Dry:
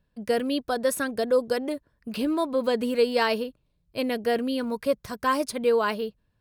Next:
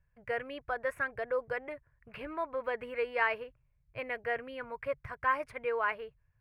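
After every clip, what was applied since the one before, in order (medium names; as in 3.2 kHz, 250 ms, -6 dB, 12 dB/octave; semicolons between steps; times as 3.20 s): FFT filter 140 Hz 0 dB, 210 Hz -26 dB, 490 Hz -11 dB, 2.2 kHz +1 dB, 3.8 kHz -26 dB, 5.9 kHz -28 dB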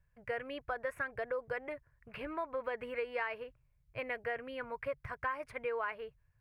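compression 6:1, threshold -33 dBFS, peak gain reduction 9.5 dB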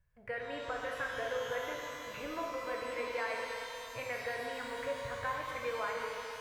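pitch-shifted reverb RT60 3.1 s, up +12 st, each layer -8 dB, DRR -1.5 dB; trim -2.5 dB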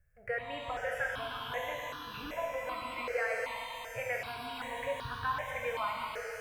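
stepped phaser 2.6 Hz 990–2100 Hz; trim +5 dB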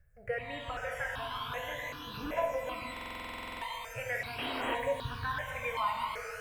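painted sound noise, 4.38–4.75 s, 260–3300 Hz -38 dBFS; phaser 0.42 Hz, delay 1.1 ms, feedback 47%; buffer glitch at 2.92 s, samples 2048, times 14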